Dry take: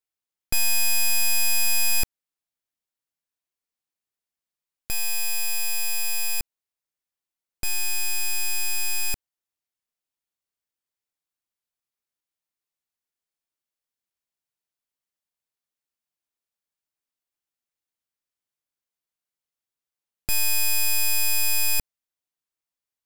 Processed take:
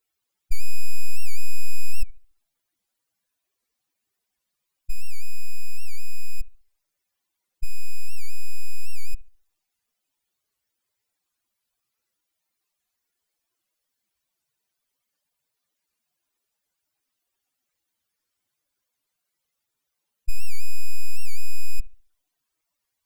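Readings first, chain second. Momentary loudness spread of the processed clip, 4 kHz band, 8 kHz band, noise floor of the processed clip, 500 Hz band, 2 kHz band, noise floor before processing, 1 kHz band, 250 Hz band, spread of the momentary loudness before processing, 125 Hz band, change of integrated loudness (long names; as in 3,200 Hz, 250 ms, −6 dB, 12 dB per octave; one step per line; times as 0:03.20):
7 LU, −15.5 dB, −16.5 dB, −82 dBFS, below −20 dB, −14.5 dB, below −85 dBFS, below −35 dB, can't be measured, 8 LU, +8.5 dB, −16.5 dB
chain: expanding power law on the bin magnitudes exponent 2.5
bucket-brigade delay 69 ms, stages 1,024, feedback 32%, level −19.5 dB
wow of a warped record 78 rpm, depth 160 cents
level +9.5 dB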